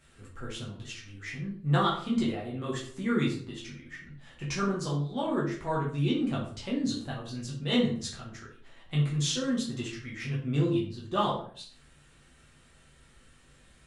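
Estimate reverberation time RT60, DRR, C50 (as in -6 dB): 0.50 s, -5.5 dB, 6.0 dB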